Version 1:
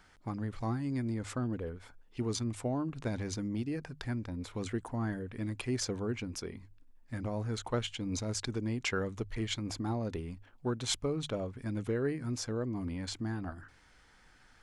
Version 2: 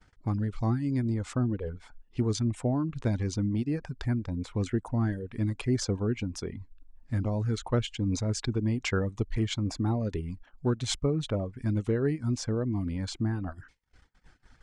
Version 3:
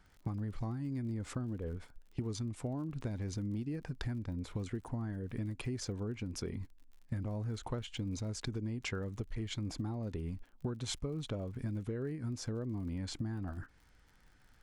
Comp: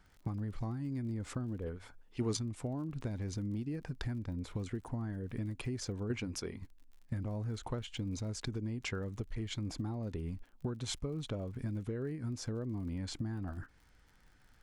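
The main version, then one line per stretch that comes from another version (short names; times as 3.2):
3
1.66–2.37 from 1
6.1–6.62 from 1
not used: 2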